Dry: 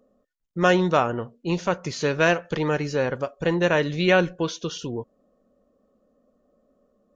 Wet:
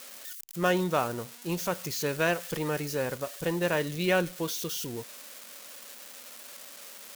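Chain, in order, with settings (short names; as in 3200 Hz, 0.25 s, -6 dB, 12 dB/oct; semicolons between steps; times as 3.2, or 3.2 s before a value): switching spikes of -21.5 dBFS; gain -7 dB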